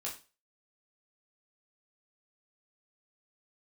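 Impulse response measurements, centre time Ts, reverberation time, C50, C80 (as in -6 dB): 23 ms, 0.30 s, 8.5 dB, 14.5 dB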